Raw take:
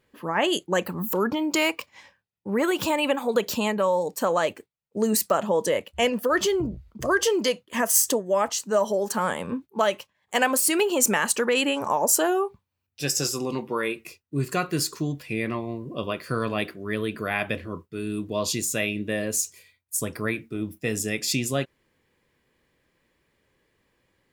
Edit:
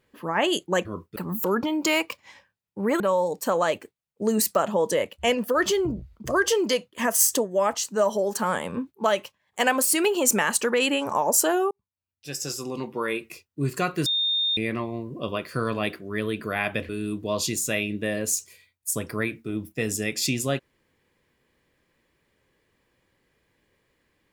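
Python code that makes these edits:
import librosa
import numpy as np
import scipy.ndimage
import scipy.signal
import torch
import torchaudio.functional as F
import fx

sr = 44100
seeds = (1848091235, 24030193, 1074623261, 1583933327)

y = fx.edit(x, sr, fx.cut(start_s=2.69, length_s=1.06),
    fx.fade_in_span(start_s=12.46, length_s=1.49),
    fx.bleep(start_s=14.81, length_s=0.51, hz=3650.0, db=-21.0),
    fx.move(start_s=17.64, length_s=0.31, to_s=0.85), tone=tone)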